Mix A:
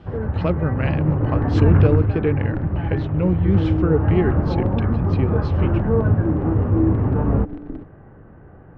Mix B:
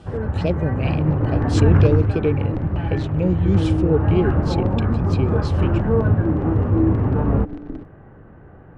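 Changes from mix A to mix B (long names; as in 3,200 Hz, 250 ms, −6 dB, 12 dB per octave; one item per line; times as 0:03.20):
speech: add Chebyshev band-stop filter 860–2,300 Hz, order 4
master: remove high-frequency loss of the air 210 metres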